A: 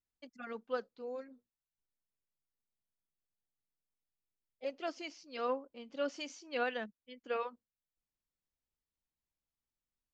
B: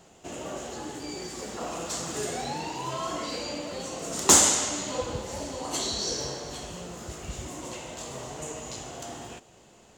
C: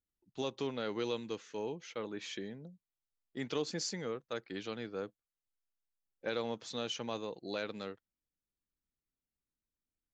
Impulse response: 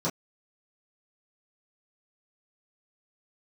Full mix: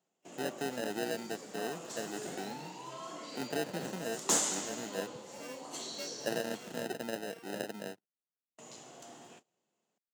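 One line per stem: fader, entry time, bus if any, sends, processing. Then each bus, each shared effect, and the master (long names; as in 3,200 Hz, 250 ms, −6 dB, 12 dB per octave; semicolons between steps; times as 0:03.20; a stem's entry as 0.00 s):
−8.0 dB, 0.00 s, no send, samples sorted by size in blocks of 16 samples; automatic ducking −13 dB, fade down 0.25 s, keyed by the third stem
−12.0 dB, 0.00 s, muted 0:06.87–0:08.58, no send, no processing
+0.5 dB, 0.00 s, no send, decimation without filtering 39×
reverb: not used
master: noise gate −57 dBFS, range −16 dB; high-pass filter 150 Hz 24 dB per octave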